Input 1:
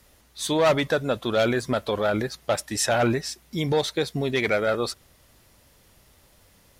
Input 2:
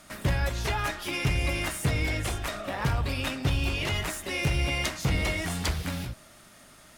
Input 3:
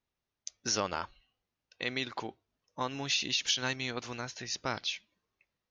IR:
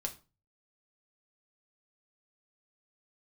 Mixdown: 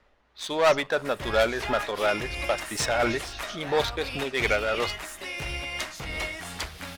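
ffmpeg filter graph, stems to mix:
-filter_complex "[0:a]adynamicsmooth=sensitivity=4.5:basefreq=2300,volume=2dB,asplit=2[link_01][link_02];[link_02]volume=-13.5dB[link_03];[1:a]adelay=950,volume=1.5dB[link_04];[2:a]volume=-9dB[link_05];[3:a]atrim=start_sample=2205[link_06];[link_03][link_06]afir=irnorm=-1:irlink=0[link_07];[link_01][link_04][link_05][link_07]amix=inputs=4:normalize=0,highshelf=frequency=4600:gain=-5.5,tremolo=f=2.9:d=0.37,equalizer=frequency=120:width=0.35:gain=-13.5"

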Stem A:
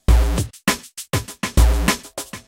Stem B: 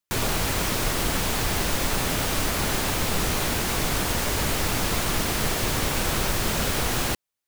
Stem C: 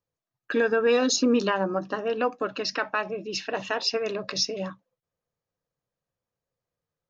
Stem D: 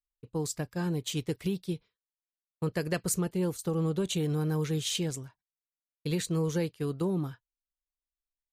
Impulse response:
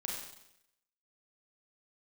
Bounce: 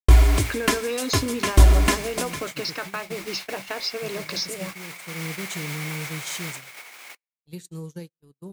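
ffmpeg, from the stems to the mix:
-filter_complex "[0:a]acrossover=split=440[link_01][link_02];[link_02]acompressor=threshold=-18dB:ratio=6[link_03];[link_01][link_03]amix=inputs=2:normalize=0,aecho=1:1:2.9:0.65,volume=-3dB,asplit=2[link_04][link_05];[link_05]volume=-15dB[link_06];[1:a]highpass=810,equalizer=frequency=2200:width_type=o:width=0.27:gain=14,alimiter=limit=-22.5dB:level=0:latency=1:release=269,volume=-3.5dB,asplit=2[link_07][link_08];[link_08]volume=-11.5dB[link_09];[2:a]acrusher=bits=6:mix=0:aa=0.000001,equalizer=frequency=4400:width=1.5:gain=7,volume=2.5dB,asplit=2[link_10][link_11];[3:a]highpass=frequency=150:poles=1,bass=frequency=250:gain=9,treble=frequency=4000:gain=10,adelay=1400,volume=-9dB,asplit=2[link_12][link_13];[link_13]volume=-14dB[link_14];[link_11]apad=whole_len=437891[link_15];[link_12][link_15]sidechaincompress=threshold=-23dB:ratio=10:attack=31:release=1230[link_16];[link_07][link_10]amix=inputs=2:normalize=0,lowshelf=frequency=470:gain=3,acompressor=threshold=-29dB:ratio=3,volume=0dB[link_17];[4:a]atrim=start_sample=2205[link_18];[link_06][link_09][link_14]amix=inputs=3:normalize=0[link_19];[link_19][link_18]afir=irnorm=-1:irlink=0[link_20];[link_04][link_16][link_17][link_20]amix=inputs=4:normalize=0,agate=range=-47dB:threshold=-32dB:ratio=16:detection=peak"

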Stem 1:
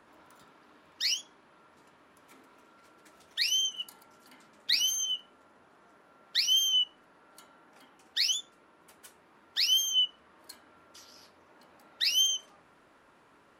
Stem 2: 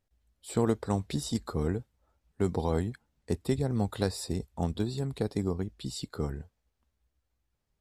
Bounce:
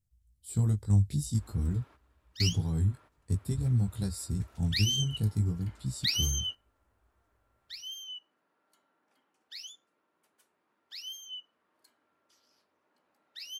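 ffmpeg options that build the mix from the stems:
ffmpeg -i stem1.wav -i stem2.wav -filter_complex "[0:a]highpass=230,adelay=1350,volume=-2.5dB[link_01];[1:a]firequalizer=gain_entry='entry(160,0);entry(450,-14);entry(8200,5)':delay=0.05:min_phase=1,flanger=delay=15.5:depth=4.5:speed=0.5,volume=-0.5dB,asplit=2[link_02][link_03];[link_03]apad=whole_len=659078[link_04];[link_01][link_04]sidechaingate=range=-14dB:threshold=-57dB:ratio=16:detection=peak[link_05];[link_05][link_02]amix=inputs=2:normalize=0,equalizer=frequency=93:width=1.1:gain=12" out.wav

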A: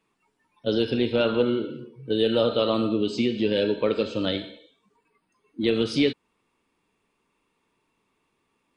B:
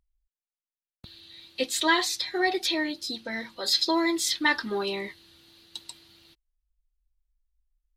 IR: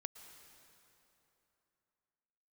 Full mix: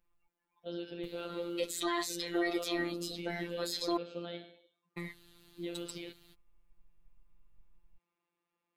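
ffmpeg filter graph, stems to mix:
-filter_complex "[0:a]alimiter=limit=-15.5dB:level=0:latency=1:release=65,highpass=frequency=300:poles=1,volume=-8dB[link_01];[1:a]asubboost=boost=7.5:cutoff=95,aexciter=amount=2.8:drive=6.4:freq=6800,volume=0.5dB,asplit=3[link_02][link_03][link_04];[link_02]atrim=end=3.97,asetpts=PTS-STARTPTS,afade=type=out:start_time=3.966:duration=0.004:curve=hsin[link_05];[link_03]atrim=start=3.97:end=4.97,asetpts=PTS-STARTPTS,volume=0[link_06];[link_04]atrim=start=4.97,asetpts=PTS-STARTPTS,afade=type=in:duration=0.004:curve=hsin[link_07];[link_05][link_06][link_07]concat=n=3:v=0:a=1[link_08];[link_01][link_08]amix=inputs=2:normalize=0,highshelf=frequency=3200:gain=-9,afftfilt=real='hypot(re,im)*cos(PI*b)':imag='0':win_size=1024:overlap=0.75,alimiter=limit=-20dB:level=0:latency=1:release=38"

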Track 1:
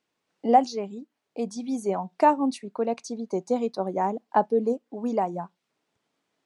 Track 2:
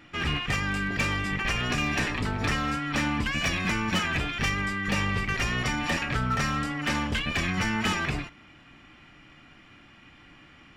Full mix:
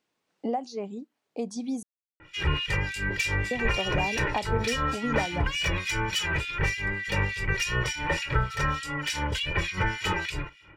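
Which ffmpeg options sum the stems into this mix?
ffmpeg -i stem1.wav -i stem2.wav -filter_complex "[0:a]acompressor=threshold=-27dB:ratio=8,volume=0.5dB,asplit=3[link_01][link_02][link_03];[link_01]atrim=end=1.83,asetpts=PTS-STARTPTS,afade=type=out:start_time=1.826:duration=0.004:curve=hsin[link_04];[link_02]atrim=start=1.83:end=3.51,asetpts=PTS-STARTPTS,volume=0[link_05];[link_03]atrim=start=3.51,asetpts=PTS-STARTPTS,afade=type=in:duration=0.004:curve=hsin[link_06];[link_04][link_05][link_06]concat=n=3:v=0:a=1[link_07];[1:a]acrossover=split=2200[link_08][link_09];[link_08]aeval=exprs='val(0)*(1-1/2+1/2*cos(2*PI*3.4*n/s))':channel_layout=same[link_10];[link_09]aeval=exprs='val(0)*(1-1/2-1/2*cos(2*PI*3.4*n/s))':channel_layout=same[link_11];[link_10][link_11]amix=inputs=2:normalize=0,aecho=1:1:2.1:1,adelay=2200,volume=1.5dB[link_12];[link_07][link_12]amix=inputs=2:normalize=0" out.wav

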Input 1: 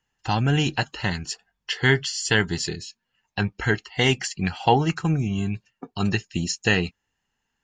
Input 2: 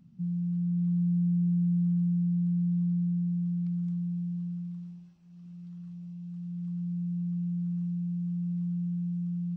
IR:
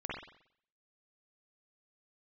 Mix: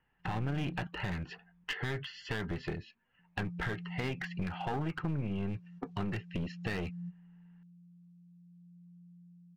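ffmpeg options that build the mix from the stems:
-filter_complex "[0:a]lowpass=frequency=2500:width=0.5412,lowpass=frequency=2500:width=1.3066,alimiter=limit=-18dB:level=0:latency=1:release=58,volume=2.5dB,asplit=2[link_01][link_02];[1:a]volume=-7dB,asplit=3[link_03][link_04][link_05];[link_03]atrim=end=0.87,asetpts=PTS-STARTPTS,afade=type=out:start_time=0.866:duration=0.004:curve=hsin[link_06];[link_04]atrim=start=0.87:end=3.19,asetpts=PTS-STARTPTS,volume=0[link_07];[link_05]atrim=start=3.19,asetpts=PTS-STARTPTS,afade=type=in:duration=0.004:curve=hsin[link_08];[link_06][link_07][link_08]concat=n=3:v=0:a=1,asplit=2[link_09][link_10];[link_10]volume=-18.5dB[link_11];[link_02]apad=whole_len=426364[link_12];[link_09][link_12]sidechaingate=range=-33dB:threshold=-55dB:ratio=16:detection=peak[link_13];[link_11]aecho=0:1:257|514|771|1028|1285|1542|1799:1|0.48|0.23|0.111|0.0531|0.0255|0.0122[link_14];[link_01][link_13][link_14]amix=inputs=3:normalize=0,aeval=exprs='clip(val(0),-1,0.0398)':channel_layout=same,acompressor=threshold=-38dB:ratio=2"

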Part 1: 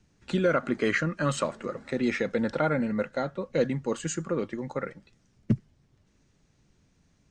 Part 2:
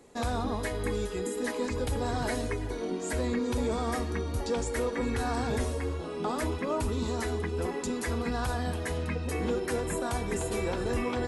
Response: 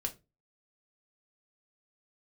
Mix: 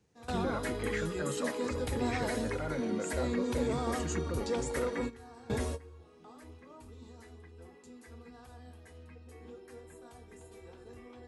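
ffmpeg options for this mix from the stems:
-filter_complex "[0:a]alimiter=limit=-21.5dB:level=0:latency=1:release=29,volume=-7dB,asplit=2[link_01][link_02];[1:a]volume=-4dB,asplit=2[link_03][link_04];[link_04]volume=-20.5dB[link_05];[link_02]apad=whole_len=497311[link_06];[link_03][link_06]sidechaingate=range=-33dB:threshold=-60dB:ratio=16:detection=peak[link_07];[2:a]atrim=start_sample=2205[link_08];[link_05][link_08]afir=irnorm=-1:irlink=0[link_09];[link_01][link_07][link_09]amix=inputs=3:normalize=0,highpass=58"

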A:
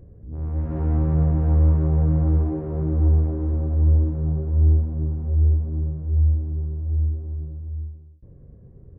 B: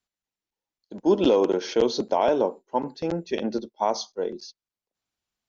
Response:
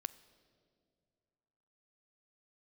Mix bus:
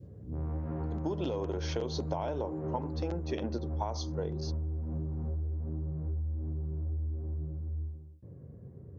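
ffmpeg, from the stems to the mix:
-filter_complex "[0:a]highpass=frequency=84:width=0.5412,highpass=frequency=84:width=1.3066,acompressor=threshold=-26dB:ratio=6,volume=0dB[link_01];[1:a]acompressor=threshold=-21dB:ratio=6,volume=0dB[link_02];[link_01][link_02]amix=inputs=2:normalize=0,adynamicequalizer=threshold=0.00501:dfrequency=960:dqfactor=0.95:tfrequency=960:tqfactor=0.95:attack=5:release=100:ratio=0.375:range=1.5:mode=boostabove:tftype=bell,acompressor=threshold=-32dB:ratio=4"

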